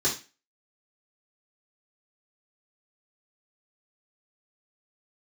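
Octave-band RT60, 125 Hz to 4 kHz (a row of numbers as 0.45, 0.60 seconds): 0.30, 0.30, 0.30, 0.30, 0.35, 0.30 seconds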